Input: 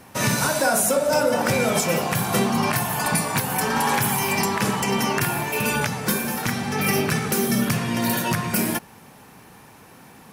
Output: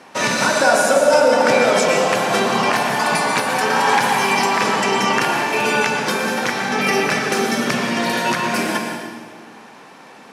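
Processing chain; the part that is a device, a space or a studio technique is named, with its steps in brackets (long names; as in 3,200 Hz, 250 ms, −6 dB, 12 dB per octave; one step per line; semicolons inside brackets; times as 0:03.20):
supermarket ceiling speaker (band-pass filter 310–5,800 Hz; convolution reverb RT60 1.7 s, pre-delay 106 ms, DRR 3 dB)
level +5.5 dB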